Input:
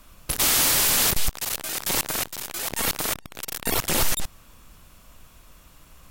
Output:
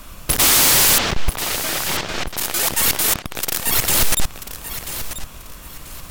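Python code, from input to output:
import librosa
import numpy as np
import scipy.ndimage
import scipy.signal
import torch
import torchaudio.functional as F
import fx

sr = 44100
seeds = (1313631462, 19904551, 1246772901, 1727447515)

y = fx.fold_sine(x, sr, drive_db=5, ceiling_db=-13.5)
y = fx.air_absorb(y, sr, metres=160.0, at=(0.98, 2.37))
y = fx.echo_feedback(y, sr, ms=987, feedback_pct=28, wet_db=-11.5)
y = y * 10.0 ** (3.5 / 20.0)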